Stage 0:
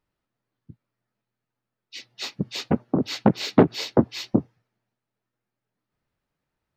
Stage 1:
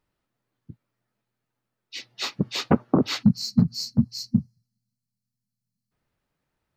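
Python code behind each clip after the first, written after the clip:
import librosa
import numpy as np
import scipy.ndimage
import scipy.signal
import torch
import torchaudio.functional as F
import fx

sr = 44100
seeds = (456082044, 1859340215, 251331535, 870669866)

y = fx.spec_box(x, sr, start_s=3.23, length_s=2.69, low_hz=250.0, high_hz=4000.0, gain_db=-28)
y = fx.dynamic_eq(y, sr, hz=1200.0, q=2.1, threshold_db=-50.0, ratio=4.0, max_db=7)
y = y * librosa.db_to_amplitude(2.5)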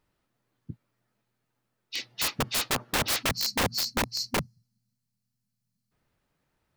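y = (np.mod(10.0 ** (23.0 / 20.0) * x + 1.0, 2.0) - 1.0) / 10.0 ** (23.0 / 20.0)
y = y * librosa.db_to_amplitude(3.0)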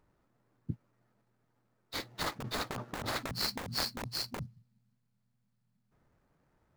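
y = scipy.ndimage.median_filter(x, 15, mode='constant')
y = fx.over_compress(y, sr, threshold_db=-36.0, ratio=-1.0)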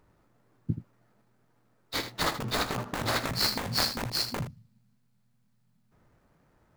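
y = fx.room_early_taps(x, sr, ms=(18, 79), db=(-12.0, -10.5))
y = y * librosa.db_to_amplitude(6.5)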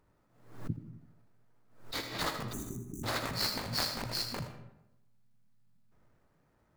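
y = fx.spec_erase(x, sr, start_s=2.52, length_s=0.52, low_hz=410.0, high_hz=5800.0)
y = fx.rev_freeverb(y, sr, rt60_s=0.9, hf_ratio=0.6, predelay_ms=40, drr_db=8.0)
y = fx.pre_swell(y, sr, db_per_s=100.0)
y = y * librosa.db_to_amplitude(-6.0)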